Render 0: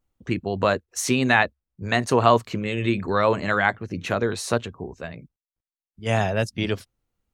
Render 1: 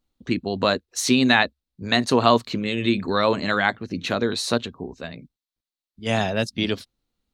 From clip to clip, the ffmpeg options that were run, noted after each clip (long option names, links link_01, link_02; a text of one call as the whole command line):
ffmpeg -i in.wav -af "equalizer=frequency=100:width_type=o:width=0.67:gain=-4,equalizer=frequency=250:width_type=o:width=0.67:gain=6,equalizer=frequency=4000:width_type=o:width=0.67:gain=11,volume=-1dB" out.wav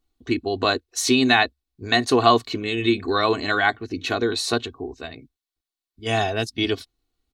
ffmpeg -i in.wav -af "aecho=1:1:2.7:0.75,volume=-1dB" out.wav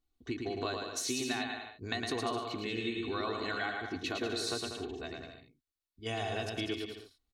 ffmpeg -i in.wav -af "acompressor=threshold=-25dB:ratio=6,aecho=1:1:110|192.5|254.4|300.8|335.6:0.631|0.398|0.251|0.158|0.1,volume=-8.5dB" out.wav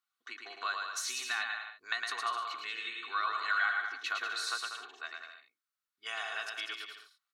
ffmpeg -i in.wav -af "highpass=frequency=1300:width_type=q:width=4,volume=-1dB" out.wav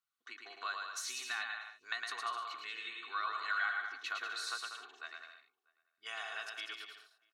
ffmpeg -i in.wav -filter_complex "[0:a]asplit=2[link_01][link_02];[link_02]adelay=641.4,volume=-27dB,highshelf=frequency=4000:gain=-14.4[link_03];[link_01][link_03]amix=inputs=2:normalize=0,volume=-4.5dB" out.wav